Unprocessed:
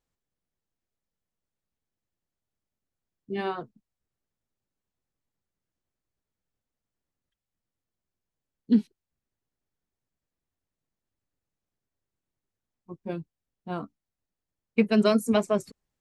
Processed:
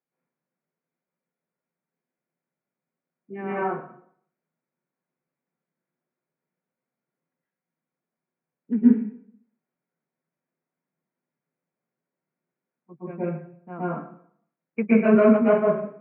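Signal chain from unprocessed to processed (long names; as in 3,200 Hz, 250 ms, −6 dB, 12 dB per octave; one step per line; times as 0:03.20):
Chebyshev band-pass filter 140–2,400 Hz, order 5
convolution reverb RT60 0.65 s, pre-delay 108 ms, DRR −9.5 dB
level −4.5 dB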